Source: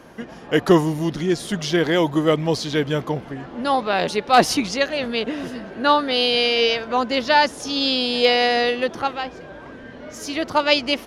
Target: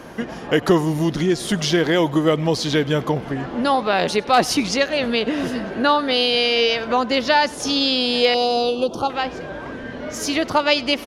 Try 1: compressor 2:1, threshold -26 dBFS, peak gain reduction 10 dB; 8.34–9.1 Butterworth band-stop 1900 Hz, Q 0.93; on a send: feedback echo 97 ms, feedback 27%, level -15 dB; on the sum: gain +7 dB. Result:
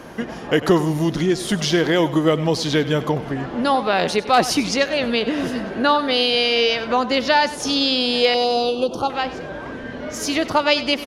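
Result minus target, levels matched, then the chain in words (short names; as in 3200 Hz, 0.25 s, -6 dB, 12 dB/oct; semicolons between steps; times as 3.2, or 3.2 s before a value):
echo-to-direct +8 dB
compressor 2:1, threshold -26 dBFS, peak gain reduction 10 dB; 8.34–9.1 Butterworth band-stop 1900 Hz, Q 0.93; on a send: feedback echo 97 ms, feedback 27%, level -23 dB; on the sum: gain +7 dB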